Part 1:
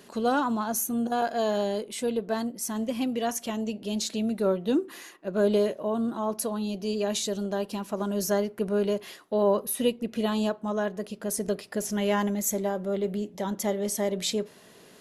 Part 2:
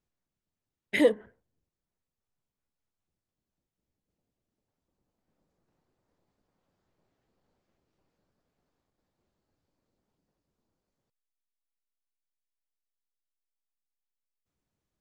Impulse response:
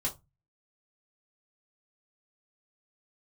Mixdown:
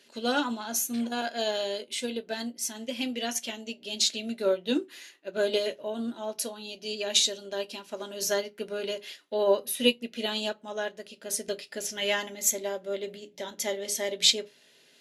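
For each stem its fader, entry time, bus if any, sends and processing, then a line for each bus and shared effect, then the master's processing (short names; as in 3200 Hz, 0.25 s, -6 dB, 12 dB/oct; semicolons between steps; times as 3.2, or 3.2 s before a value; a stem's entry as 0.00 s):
-3.0 dB, 0.00 s, send -6.5 dB, notch 1100 Hz, Q 6.3
-7.5 dB, 0.00 s, no send, compressor, threshold -27 dBFS, peak gain reduction 11 dB; full-wave rectifier; auto duck -15 dB, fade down 1.55 s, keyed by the first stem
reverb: on, RT60 0.20 s, pre-delay 3 ms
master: weighting filter D; upward expander 1.5:1, over -42 dBFS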